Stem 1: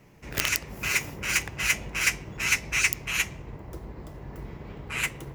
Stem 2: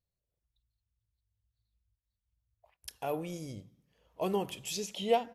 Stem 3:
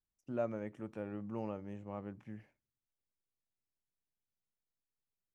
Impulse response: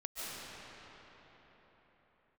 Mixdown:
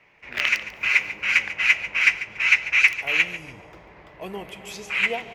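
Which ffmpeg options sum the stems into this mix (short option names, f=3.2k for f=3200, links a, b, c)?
-filter_complex "[0:a]acrossover=split=500 4600:gain=0.178 1 0.1[a][b][c];[a][b][c]amix=inputs=3:normalize=0,volume=0dB,asplit=2[d][e];[e]volume=-14.5dB[f];[1:a]volume=-5dB,asplit=2[g][h];[h]volume=-9dB[i];[2:a]volume=-10.5dB[j];[3:a]atrim=start_sample=2205[k];[i][k]afir=irnorm=-1:irlink=0[l];[f]aecho=0:1:143|286|429|572:1|0.29|0.0841|0.0244[m];[d][g][j][l][m]amix=inputs=5:normalize=0,equalizer=f=2.3k:t=o:w=0.86:g=9.5"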